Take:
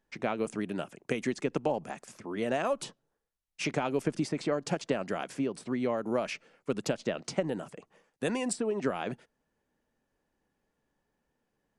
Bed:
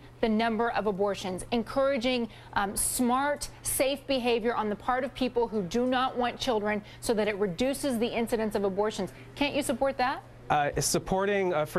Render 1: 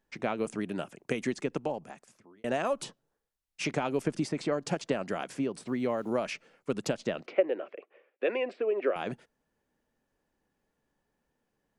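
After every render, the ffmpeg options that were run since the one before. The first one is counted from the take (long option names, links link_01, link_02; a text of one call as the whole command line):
ffmpeg -i in.wav -filter_complex "[0:a]asettb=1/sr,asplit=3[link_01][link_02][link_03];[link_01]atrim=end=5.674[link_04];[link_02]atrim=start=5.67:end=6.13,asetpts=PTS-STARTPTS,afade=type=in:duration=0.004:curve=qsin,afade=type=out:start_time=0.456:duration=0.004:curve=qsin,aeval=exprs='val(0)*gte(abs(val(0)),0.00141)':channel_layout=same[link_05];[link_03]atrim=start=6.126[link_06];[link_04][link_05]acrossfade=duration=0.004:curve1=hsin:curve2=qsin[link_07];[link_07][link_06]acrossfade=duration=0.004:curve1=qsin:curve2=hsin,asettb=1/sr,asplit=3[link_08][link_09][link_10];[link_08]atrim=end=7.264[link_11];[link_09]atrim=start=7.26:end=8.96,asetpts=PTS-STARTPTS,afade=type=in:duration=0.004:curve=qsin,afade=type=out:start_time=1.696:duration=0.004:curve=qsin,highpass=frequency=340:width=0.5412,highpass=frequency=340:width=1.3066,equalizer=frequency=370:width_type=q:width=4:gain=5,equalizer=frequency=550:width_type=q:width=4:gain=8,equalizer=frequency=900:width_type=q:width=4:gain=-8,equalizer=frequency=2400:width_type=q:width=4:gain=7,lowpass=frequency=2900:width=0.5412,lowpass=frequency=2900:width=1.3066[link_12];[link_10]atrim=start=8.956[link_13];[link_11][link_12]acrossfade=duration=0.004:curve1=hsin:curve2=qsin[link_14];[link_14][link_13]acrossfade=duration=0.004:curve1=qsin:curve2=hsin,asplit=2[link_15][link_16];[link_15]atrim=end=2.44,asetpts=PTS-STARTPTS,afade=type=out:start_time=1.32:duration=1.12[link_17];[link_16]atrim=start=2.44,asetpts=PTS-STARTPTS,afade=type=in:duration=0.004:curve=hsin[link_18];[link_17][link_18]concat=n=2:v=0:a=1" out.wav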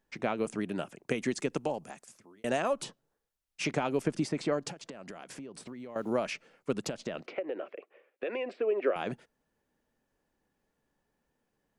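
ffmpeg -i in.wav -filter_complex "[0:a]asettb=1/sr,asplit=3[link_01][link_02][link_03];[link_01]atrim=end=1.314[link_04];[link_02]atrim=start=1.31:end=2.6,asetpts=PTS-STARTPTS,afade=type=in:duration=0.004:curve=qsin,afade=type=out:start_time=1.286:duration=0.004:curve=qsin,equalizer=frequency=9700:width=0.44:gain=8.5[link_05];[link_03]atrim=start=2.596[link_06];[link_04][link_05]acrossfade=duration=0.004:curve1=hsin:curve2=qsin[link_07];[link_07][link_06]acrossfade=duration=0.004:curve1=qsin:curve2=hsin,asettb=1/sr,asplit=3[link_08][link_09][link_10];[link_08]atrim=end=4.704[link_11];[link_09]atrim=start=4.7:end=5.96,asetpts=PTS-STARTPTS,afade=type=in:duration=0.004:curve=qsin,afade=type=out:start_time=1.256:duration=0.004:curve=qsin,acompressor=threshold=-40dB:ratio=10:attack=3.2:release=140:knee=1:detection=peak[link_12];[link_10]atrim=start=5.956[link_13];[link_11][link_12]acrossfade=duration=0.004:curve1=hsin:curve2=qsin[link_14];[link_14][link_13]acrossfade=duration=0.004:curve1=qsin:curve2=hsin,asettb=1/sr,asplit=3[link_15][link_16][link_17];[link_15]atrim=end=6.864[link_18];[link_16]atrim=start=6.86:end=8.49,asetpts=PTS-STARTPTS,afade=type=in:duration=0.004:curve=qsin,afade=type=out:start_time=1.626:duration=0.004:curve=qsin,acompressor=threshold=-30dB:ratio=5:attack=3.2:release=140:knee=1:detection=peak[link_19];[link_17]atrim=start=8.486[link_20];[link_18][link_19]acrossfade=duration=0.004:curve1=hsin:curve2=qsin[link_21];[link_21][link_20]acrossfade=duration=0.004:curve1=qsin:curve2=hsin" out.wav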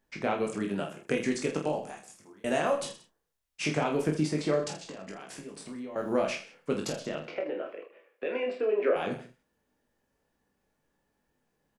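ffmpeg -i in.wav -filter_complex "[0:a]asplit=2[link_01][link_02];[link_02]adelay=32,volume=-10dB[link_03];[link_01][link_03]amix=inputs=2:normalize=0,asplit=2[link_04][link_05];[link_05]aecho=0:1:20|46|79.8|123.7|180.9:0.631|0.398|0.251|0.158|0.1[link_06];[link_04][link_06]amix=inputs=2:normalize=0" out.wav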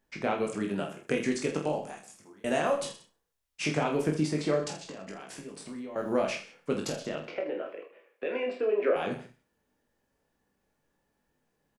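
ffmpeg -i in.wav -af "aecho=1:1:67|134|201:0.141|0.0396|0.0111" out.wav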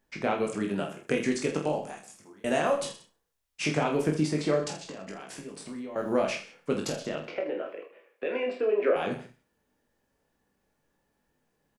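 ffmpeg -i in.wav -af "volume=1.5dB" out.wav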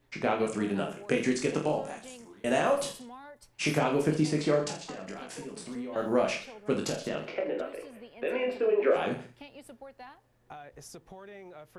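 ffmpeg -i in.wav -i bed.wav -filter_complex "[1:a]volume=-20.5dB[link_01];[0:a][link_01]amix=inputs=2:normalize=0" out.wav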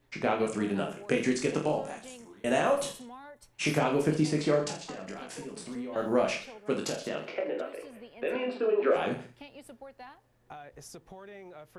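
ffmpeg -i in.wav -filter_complex "[0:a]asettb=1/sr,asplit=3[link_01][link_02][link_03];[link_01]atrim=end=2.134[link_04];[link_02]atrim=start=2.13:end=3.67,asetpts=PTS-STARTPTS,afade=type=in:duration=0.004:curve=qsin,afade=type=out:start_time=1.536:duration=0.004:curve=qsin,bandreject=frequency=4800:width=10[link_05];[link_03]atrim=start=3.666[link_06];[link_04][link_05]acrossfade=duration=0.004:curve1=hsin:curve2=qsin[link_07];[link_07][link_06]acrossfade=duration=0.004:curve1=qsin:curve2=hsin,asettb=1/sr,asplit=3[link_08][link_09][link_10];[link_08]atrim=end=6.574[link_11];[link_09]atrim=start=6.57:end=7.84,asetpts=PTS-STARTPTS,afade=type=in:duration=0.004:curve=qsin,afade=type=out:start_time=1.266:duration=0.004:curve=qsin,lowshelf=frequency=130:gain=-10.5[link_12];[link_10]atrim=start=7.836[link_13];[link_11][link_12]acrossfade=duration=0.004:curve1=hsin:curve2=qsin[link_14];[link_14][link_13]acrossfade=duration=0.004:curve1=qsin:curve2=hsin,asettb=1/sr,asplit=3[link_15][link_16][link_17];[link_15]atrim=end=8.354[link_18];[link_16]atrim=start=8.35:end=8.91,asetpts=PTS-STARTPTS,afade=type=in:duration=0.004:curve=qsin,afade=type=out:start_time=0.556:duration=0.004:curve=qsin,highpass=160,equalizer=frequency=240:width_type=q:width=4:gain=4,equalizer=frequency=530:width_type=q:width=4:gain=-4,equalizer=frequency=1300:width_type=q:width=4:gain=5,equalizer=frequency=2100:width_type=q:width=4:gain=-7,equalizer=frequency=4000:width_type=q:width=4:gain=5,equalizer=frequency=6700:width_type=q:width=4:gain=-5,lowpass=frequency=9200:width=0.5412,lowpass=frequency=9200:width=1.3066[link_19];[link_17]atrim=start=8.906[link_20];[link_18][link_19]acrossfade=duration=0.004:curve1=hsin:curve2=qsin[link_21];[link_21][link_20]acrossfade=duration=0.004:curve1=qsin:curve2=hsin" out.wav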